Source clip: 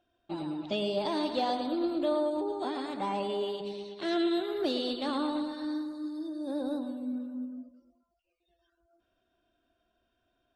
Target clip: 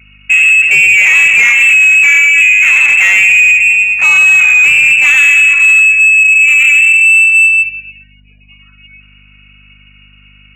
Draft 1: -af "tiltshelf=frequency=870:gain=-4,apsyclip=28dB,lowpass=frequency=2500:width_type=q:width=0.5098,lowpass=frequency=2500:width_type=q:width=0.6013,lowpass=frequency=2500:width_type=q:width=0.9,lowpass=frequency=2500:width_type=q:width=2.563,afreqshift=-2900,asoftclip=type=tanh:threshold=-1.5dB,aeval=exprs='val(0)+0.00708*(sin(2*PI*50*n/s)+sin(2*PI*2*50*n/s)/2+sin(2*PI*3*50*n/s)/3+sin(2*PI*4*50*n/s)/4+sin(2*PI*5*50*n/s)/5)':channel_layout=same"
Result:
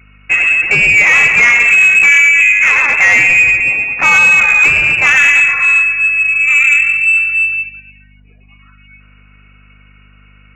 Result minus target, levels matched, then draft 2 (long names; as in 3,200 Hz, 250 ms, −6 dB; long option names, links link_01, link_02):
1,000 Hz band +11.0 dB
-af "tiltshelf=frequency=870:gain=7.5,apsyclip=28dB,lowpass=frequency=2500:width_type=q:width=0.5098,lowpass=frequency=2500:width_type=q:width=0.6013,lowpass=frequency=2500:width_type=q:width=0.9,lowpass=frequency=2500:width_type=q:width=2.563,afreqshift=-2900,asoftclip=type=tanh:threshold=-1.5dB,aeval=exprs='val(0)+0.00708*(sin(2*PI*50*n/s)+sin(2*PI*2*50*n/s)/2+sin(2*PI*3*50*n/s)/3+sin(2*PI*4*50*n/s)/4+sin(2*PI*5*50*n/s)/5)':channel_layout=same"